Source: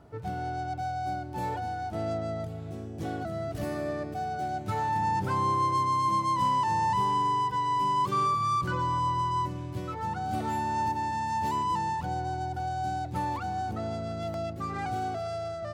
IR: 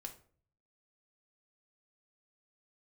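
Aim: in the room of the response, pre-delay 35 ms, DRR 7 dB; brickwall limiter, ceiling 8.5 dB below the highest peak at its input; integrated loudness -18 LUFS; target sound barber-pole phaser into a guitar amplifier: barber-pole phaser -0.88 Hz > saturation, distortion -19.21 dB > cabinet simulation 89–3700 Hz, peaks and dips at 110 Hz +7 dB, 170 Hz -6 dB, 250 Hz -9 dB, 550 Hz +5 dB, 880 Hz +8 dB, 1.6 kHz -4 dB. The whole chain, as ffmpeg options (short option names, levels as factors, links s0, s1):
-filter_complex "[0:a]alimiter=level_in=1.12:limit=0.0631:level=0:latency=1,volume=0.891,asplit=2[s0][s1];[1:a]atrim=start_sample=2205,adelay=35[s2];[s1][s2]afir=irnorm=-1:irlink=0,volume=0.708[s3];[s0][s3]amix=inputs=2:normalize=0,asplit=2[s4][s5];[s5]afreqshift=-0.88[s6];[s4][s6]amix=inputs=2:normalize=1,asoftclip=threshold=0.0531,highpass=89,equalizer=f=110:t=q:w=4:g=7,equalizer=f=170:t=q:w=4:g=-6,equalizer=f=250:t=q:w=4:g=-9,equalizer=f=550:t=q:w=4:g=5,equalizer=f=880:t=q:w=4:g=8,equalizer=f=1600:t=q:w=4:g=-4,lowpass=f=3700:w=0.5412,lowpass=f=3700:w=1.3066,volume=4.47"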